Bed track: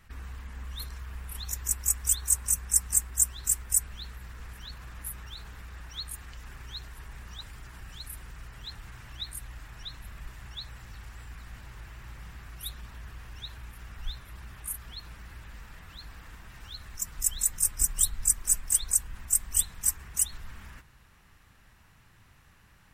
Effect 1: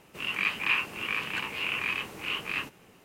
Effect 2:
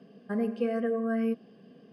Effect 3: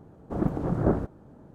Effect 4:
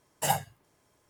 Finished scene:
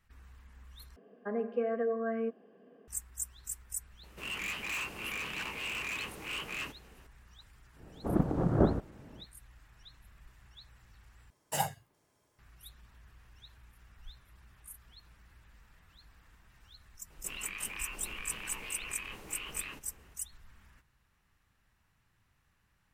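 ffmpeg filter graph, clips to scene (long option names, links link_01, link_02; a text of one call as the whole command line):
ffmpeg -i bed.wav -i cue0.wav -i cue1.wav -i cue2.wav -i cue3.wav -filter_complex "[1:a]asplit=2[link_01][link_02];[0:a]volume=-14dB[link_03];[2:a]acrossover=split=280 2200:gain=0.112 1 0.0708[link_04][link_05][link_06];[link_04][link_05][link_06]amix=inputs=3:normalize=0[link_07];[link_01]volume=30.5dB,asoftclip=hard,volume=-30.5dB[link_08];[link_02]acompressor=threshold=-33dB:ratio=5:attack=3.4:release=36:knee=1:detection=rms[link_09];[link_03]asplit=3[link_10][link_11][link_12];[link_10]atrim=end=0.964[link_13];[link_07]atrim=end=1.92,asetpts=PTS-STARTPTS,volume=-0.5dB[link_14];[link_11]atrim=start=2.876:end=11.304[link_15];[4:a]atrim=end=1.09,asetpts=PTS-STARTPTS,volume=-5dB[link_16];[link_12]atrim=start=12.386[link_17];[link_08]atrim=end=3.04,asetpts=PTS-STARTPTS,volume=-3.5dB,afade=type=in:duration=0.004:curve=hsin,afade=type=out:start_time=3.036:duration=0.004:curve=hsin,adelay=4030[link_18];[3:a]atrim=end=1.54,asetpts=PTS-STARTPTS,volume=-2dB,afade=type=in:duration=0.1,afade=type=out:start_time=1.44:duration=0.1,adelay=7740[link_19];[link_09]atrim=end=3.04,asetpts=PTS-STARTPTS,volume=-7dB,afade=type=in:duration=0.004:curve=hsin,afade=type=out:start_time=3.036:duration=0.004:curve=hsin,adelay=17100[link_20];[link_13][link_14]acrossfade=duration=0.004:curve1=hsin:curve2=hsin[link_21];[link_21][link_15]acrossfade=duration=0.004:curve1=hsin:curve2=hsin[link_22];[link_22][link_16]acrossfade=duration=0.004:curve1=hsin:curve2=hsin[link_23];[link_23][link_17]acrossfade=duration=0.004:curve1=hsin:curve2=hsin[link_24];[link_24][link_18][link_19][link_20]amix=inputs=4:normalize=0" out.wav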